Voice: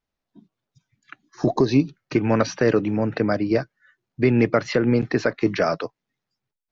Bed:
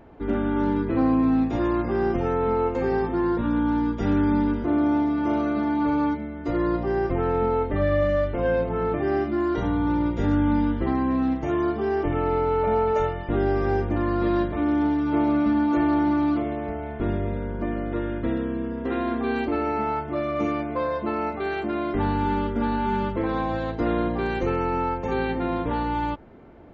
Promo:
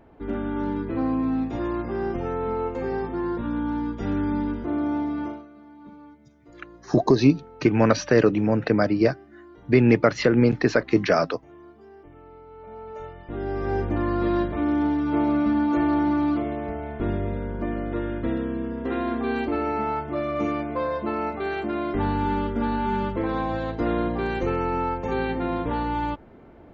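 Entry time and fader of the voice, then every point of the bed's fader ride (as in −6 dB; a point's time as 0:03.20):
5.50 s, +1.0 dB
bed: 0:05.23 −4 dB
0:05.48 −23.5 dB
0:12.46 −23.5 dB
0:13.84 −0.5 dB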